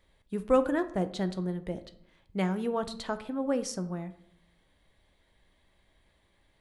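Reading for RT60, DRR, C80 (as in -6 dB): 0.75 s, 9.5 dB, 17.5 dB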